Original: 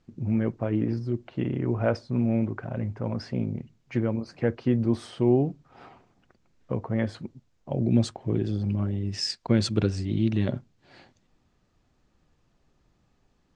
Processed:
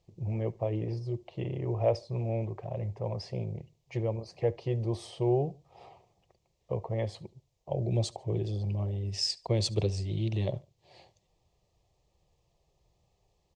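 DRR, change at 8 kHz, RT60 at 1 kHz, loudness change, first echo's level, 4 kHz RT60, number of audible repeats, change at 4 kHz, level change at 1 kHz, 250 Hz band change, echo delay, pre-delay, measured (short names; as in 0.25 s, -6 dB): none, -0.5 dB, none, -5.0 dB, -24.0 dB, none, 2, -1.0 dB, -2.0 dB, -11.5 dB, 72 ms, none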